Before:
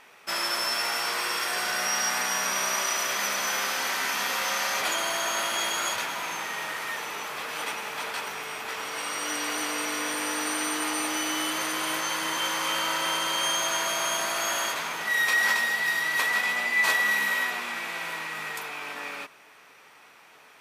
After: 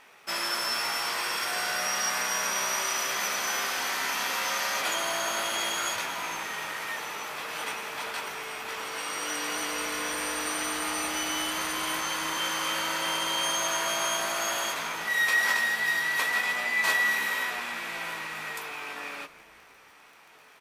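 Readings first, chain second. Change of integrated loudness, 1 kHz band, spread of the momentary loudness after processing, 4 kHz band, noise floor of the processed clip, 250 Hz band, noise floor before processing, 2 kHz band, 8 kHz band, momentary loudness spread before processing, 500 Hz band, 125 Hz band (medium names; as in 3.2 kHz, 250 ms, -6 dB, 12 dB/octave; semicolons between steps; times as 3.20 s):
-1.5 dB, -1.5 dB, 10 LU, -1.5 dB, -55 dBFS, -3.0 dB, -53 dBFS, -1.5 dB, -1.5 dB, 10 LU, -1.0 dB, -0.5 dB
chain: frequency-shifting echo 166 ms, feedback 63%, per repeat -120 Hz, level -19.5 dB; crackle 31 per s -43 dBFS; doubling 18 ms -11 dB; trim -2 dB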